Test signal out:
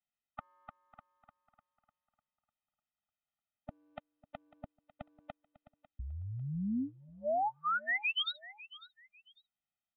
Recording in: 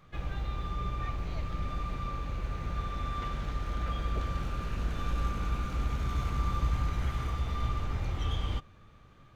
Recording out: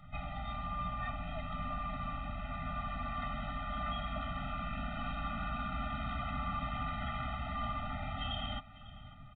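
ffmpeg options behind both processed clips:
ffmpeg -i in.wav -filter_complex "[0:a]acrossover=split=220[link_01][link_02];[link_01]acompressor=threshold=-46dB:ratio=6[link_03];[link_03][link_02]amix=inputs=2:normalize=0,aecho=1:1:548|1096:0.119|0.0333,aresample=8000,aresample=44100,afftfilt=real='re*eq(mod(floor(b*sr/1024/300),2),0)':imag='im*eq(mod(floor(b*sr/1024/300),2),0)':win_size=1024:overlap=0.75,volume=5dB" out.wav

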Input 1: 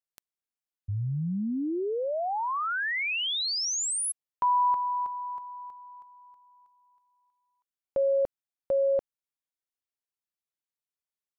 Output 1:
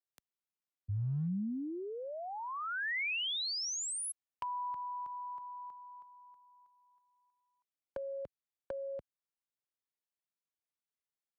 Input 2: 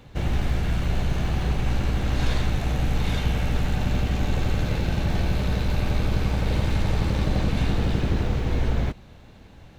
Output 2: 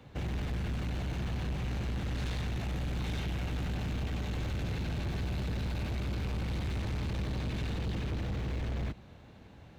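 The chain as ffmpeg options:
ffmpeg -i in.wav -filter_complex "[0:a]highpass=59,highshelf=frequency=3900:gain=-5.5,acrossover=split=210|1700[link_01][link_02][link_03];[link_02]acompressor=threshold=-39dB:ratio=5:attack=19:release=133:knee=2.83:detection=peak[link_04];[link_01][link_04][link_03]amix=inputs=3:normalize=0,volume=27dB,asoftclip=hard,volume=-27dB,volume=-4dB" out.wav

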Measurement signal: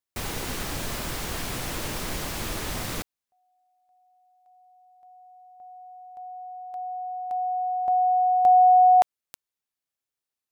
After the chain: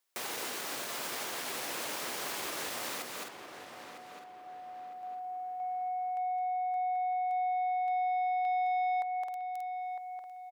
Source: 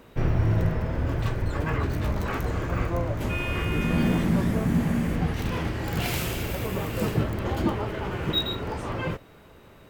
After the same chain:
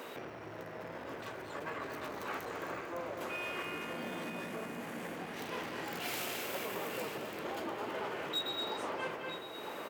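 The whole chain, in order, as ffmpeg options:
ffmpeg -i in.wav -filter_complex "[0:a]asplit=2[link_01][link_02];[link_02]aecho=0:1:214|263:0.398|0.188[link_03];[link_01][link_03]amix=inputs=2:normalize=0,acompressor=threshold=-38dB:ratio=4:attack=0.24:release=812:detection=peak,asoftclip=type=tanh:threshold=-35.5dB,highpass=410,asplit=2[link_04][link_05];[link_05]adelay=956,lowpass=frequency=2300:poles=1,volume=-7dB,asplit=2[link_06][link_07];[link_07]adelay=956,lowpass=frequency=2300:poles=1,volume=0.41,asplit=2[link_08][link_09];[link_09]adelay=956,lowpass=frequency=2300:poles=1,volume=0.41,asplit=2[link_10][link_11];[link_11]adelay=956,lowpass=frequency=2300:poles=1,volume=0.41,asplit=2[link_12][link_13];[link_13]adelay=956,lowpass=frequency=2300:poles=1,volume=0.41[link_14];[link_06][link_08][link_10][link_12][link_14]amix=inputs=5:normalize=0[link_15];[link_04][link_15]amix=inputs=2:normalize=0,volume=9dB" out.wav

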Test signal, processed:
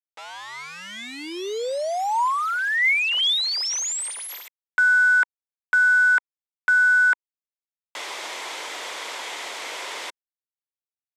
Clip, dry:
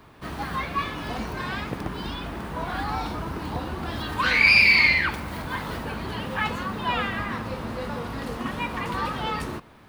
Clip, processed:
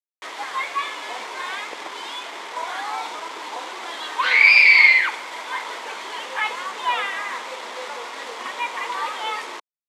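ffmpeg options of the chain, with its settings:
ffmpeg -i in.wav -af "acrusher=bits=5:mix=0:aa=0.000001,highpass=frequency=410:width=0.5412,highpass=frequency=410:width=1.3066,equalizer=frequency=970:width_type=q:width=4:gain=6,equalizer=frequency=2100:width_type=q:width=4:gain=8,equalizer=frequency=3400:width_type=q:width=4:gain=6,equalizer=frequency=9500:width_type=q:width=4:gain=-7,lowpass=frequency=9800:width=0.5412,lowpass=frequency=9800:width=1.3066,volume=-1dB" out.wav

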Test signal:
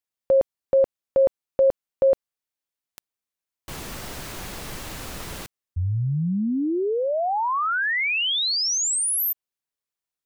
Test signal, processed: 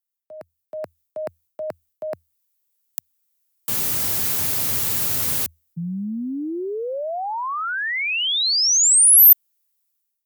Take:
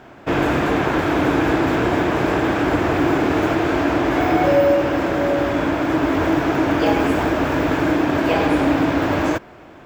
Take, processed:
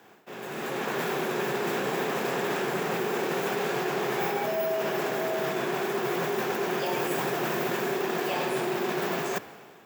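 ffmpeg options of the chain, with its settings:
ffmpeg -i in.wav -af "areverse,acompressor=threshold=-26dB:ratio=12:attack=8.3:release=189:knee=1:detection=rms,areverse,afreqshift=81,dynaudnorm=framelen=260:gausssize=5:maxgain=14dB,aemphasis=mode=production:type=75fm,volume=-12dB" out.wav

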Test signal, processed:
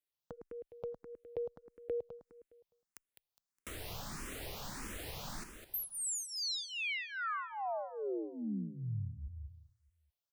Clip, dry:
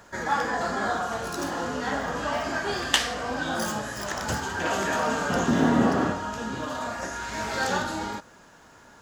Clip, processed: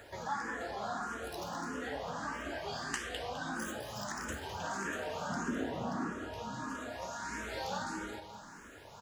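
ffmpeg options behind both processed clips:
ffmpeg -i in.wav -filter_complex "[0:a]acompressor=threshold=-46dB:ratio=2,asplit=2[link_01][link_02];[link_02]aecho=0:1:206|412|618|824:0.398|0.127|0.0408|0.013[link_03];[link_01][link_03]amix=inputs=2:normalize=0,asplit=2[link_04][link_05];[link_05]afreqshift=1.6[link_06];[link_04][link_06]amix=inputs=2:normalize=1,volume=2.5dB" out.wav

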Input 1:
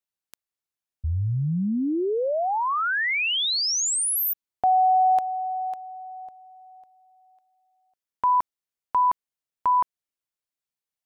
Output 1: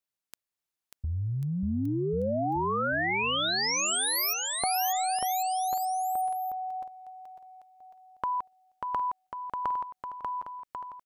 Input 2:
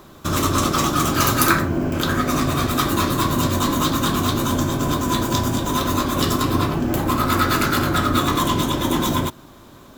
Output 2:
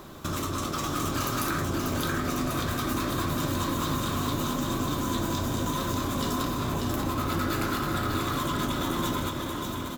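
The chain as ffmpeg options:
ffmpeg -i in.wav -filter_complex "[0:a]acompressor=threshold=-29dB:ratio=6:attack=5.7:release=93:knee=1:detection=peak,asplit=2[link_01][link_02];[link_02]aecho=0:1:590|1092|1518|1880|2188:0.631|0.398|0.251|0.158|0.1[link_03];[link_01][link_03]amix=inputs=2:normalize=0" out.wav

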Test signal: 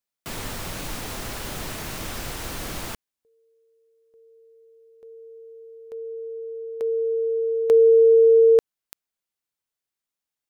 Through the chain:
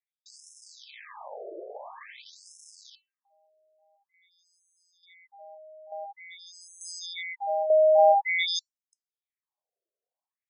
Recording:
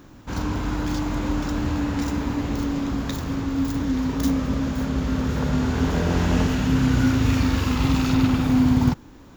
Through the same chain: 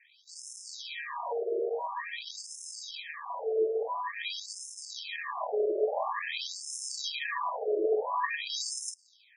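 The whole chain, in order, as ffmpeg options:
ffmpeg -i in.wav -af "afreqshift=170,acrusher=samples=31:mix=1:aa=0.000001,afftfilt=real='re*between(b*sr/1024,480*pow(7500/480,0.5+0.5*sin(2*PI*0.48*pts/sr))/1.41,480*pow(7500/480,0.5+0.5*sin(2*PI*0.48*pts/sr))*1.41)':imag='im*between(b*sr/1024,480*pow(7500/480,0.5+0.5*sin(2*PI*0.48*pts/sr))/1.41,480*pow(7500/480,0.5+0.5*sin(2*PI*0.48*pts/sr))*1.41)':win_size=1024:overlap=0.75,volume=-2dB" out.wav

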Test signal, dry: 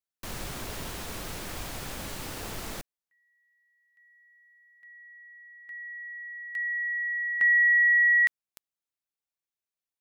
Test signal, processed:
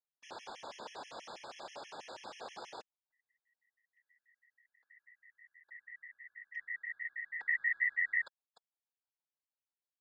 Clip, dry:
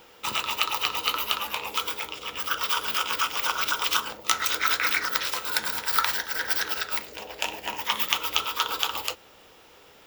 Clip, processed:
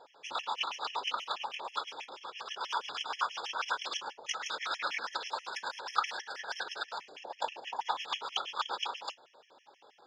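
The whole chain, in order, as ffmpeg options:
ffmpeg -i in.wav -af "highpass=420,equalizer=frequency=550:width_type=q:width=4:gain=6,equalizer=frequency=850:width_type=q:width=4:gain=9,equalizer=frequency=2100:width_type=q:width=4:gain=-6,lowpass=frequency=5800:width=0.5412,lowpass=frequency=5800:width=1.3066,afftfilt=real='hypot(re,im)*cos(2*PI*random(0))':imag='hypot(re,im)*sin(2*PI*random(1))':win_size=512:overlap=0.75,afftfilt=real='re*gt(sin(2*PI*6.2*pts/sr)*(1-2*mod(floor(b*sr/1024/1700),2)),0)':imag='im*gt(sin(2*PI*6.2*pts/sr)*(1-2*mod(floor(b*sr/1024/1700),2)),0)':win_size=1024:overlap=0.75" out.wav

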